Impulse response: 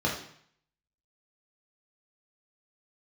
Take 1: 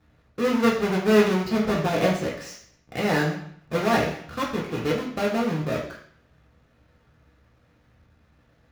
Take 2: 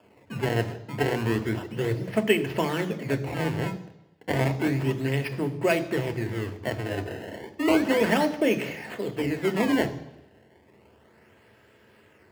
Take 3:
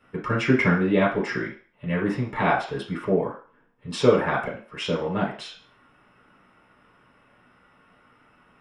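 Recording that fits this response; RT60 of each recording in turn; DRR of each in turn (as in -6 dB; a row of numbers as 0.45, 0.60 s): 1; 0.60, 0.90, 0.40 s; -3.5, 8.5, -6.0 dB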